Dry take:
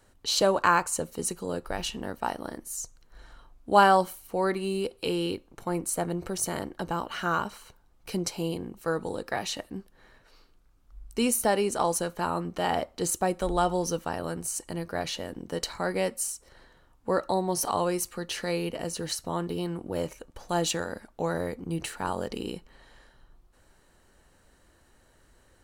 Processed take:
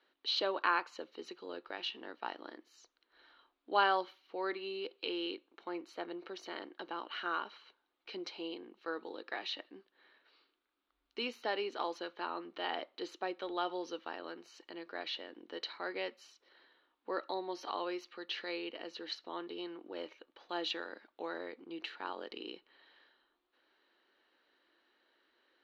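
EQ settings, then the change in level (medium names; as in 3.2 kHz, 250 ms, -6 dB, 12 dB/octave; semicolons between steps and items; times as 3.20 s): elliptic band-pass 320–3800 Hz, stop band 40 dB; peaking EQ 620 Hz -11 dB 2.8 oct; -1.0 dB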